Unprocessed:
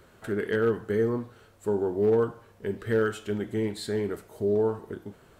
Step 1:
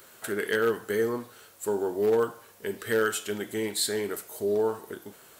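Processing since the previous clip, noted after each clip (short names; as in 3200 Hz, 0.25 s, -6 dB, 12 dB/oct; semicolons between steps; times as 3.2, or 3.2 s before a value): RIAA curve recording; gain +2.5 dB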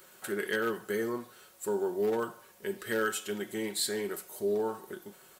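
comb 5.4 ms, depth 47%; gain -4.5 dB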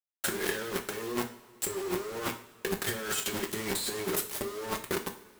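companded quantiser 2-bit; negative-ratio compressor -30 dBFS, ratio -0.5; two-slope reverb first 0.41 s, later 2.3 s, from -18 dB, DRR 4 dB; gain -2.5 dB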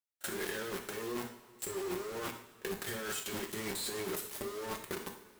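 limiter -26 dBFS, peak gain reduction 8 dB; pre-echo 31 ms -23 dB; gain -3 dB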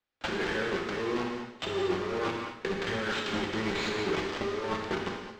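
sample-and-hold 4×; air absorption 160 m; non-linear reverb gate 0.25 s flat, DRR 2.5 dB; gain +7.5 dB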